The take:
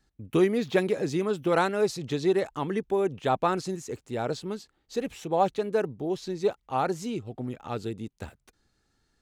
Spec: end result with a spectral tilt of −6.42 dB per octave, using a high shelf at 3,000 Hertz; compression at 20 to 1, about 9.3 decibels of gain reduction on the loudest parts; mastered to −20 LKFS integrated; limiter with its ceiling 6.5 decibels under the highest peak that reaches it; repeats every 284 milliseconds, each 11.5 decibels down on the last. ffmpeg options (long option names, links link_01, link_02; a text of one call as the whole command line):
ffmpeg -i in.wav -af "highshelf=frequency=3000:gain=-9,acompressor=threshold=-27dB:ratio=20,alimiter=level_in=1.5dB:limit=-24dB:level=0:latency=1,volume=-1.5dB,aecho=1:1:284|568|852:0.266|0.0718|0.0194,volume=16dB" out.wav